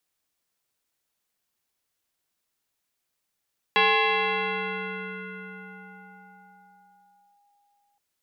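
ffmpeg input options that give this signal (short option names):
-f lavfi -i "aevalsrc='0.158*pow(10,-3*t/4.79)*sin(2*PI*814*t+4.1*clip(1-t/3.65,0,1)*sin(2*PI*0.77*814*t))':d=4.22:s=44100"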